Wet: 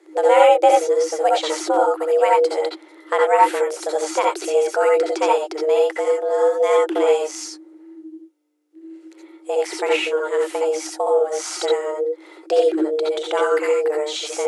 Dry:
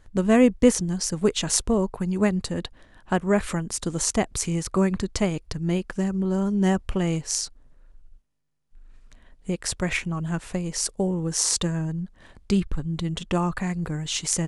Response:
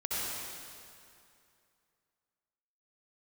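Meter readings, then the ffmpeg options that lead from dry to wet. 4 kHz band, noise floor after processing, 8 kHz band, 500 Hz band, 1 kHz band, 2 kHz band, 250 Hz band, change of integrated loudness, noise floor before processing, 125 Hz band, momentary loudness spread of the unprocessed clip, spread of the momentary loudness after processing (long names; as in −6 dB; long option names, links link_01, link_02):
+2.0 dB, −48 dBFS, −5.0 dB, +11.5 dB, +15.0 dB, +5.5 dB, −7.0 dB, +6.0 dB, −55 dBFS, below −40 dB, 8 LU, 9 LU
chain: -filter_complex "[0:a]afreqshift=300,acrossover=split=4100[link_01][link_02];[link_02]acompressor=threshold=-39dB:ratio=4:attack=1:release=60[link_03];[link_01][link_03]amix=inputs=2:normalize=0[link_04];[1:a]atrim=start_sample=2205,afade=type=out:start_time=0.14:duration=0.01,atrim=end_sample=6615[link_05];[link_04][link_05]afir=irnorm=-1:irlink=0,volume=5dB"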